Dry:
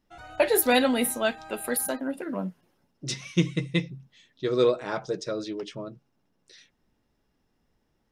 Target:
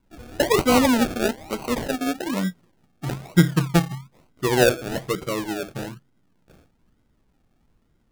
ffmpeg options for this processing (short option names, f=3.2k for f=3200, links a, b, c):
-af "lowshelf=f=380:g=10,acrusher=samples=35:mix=1:aa=0.000001:lfo=1:lforange=21:lforate=1.1"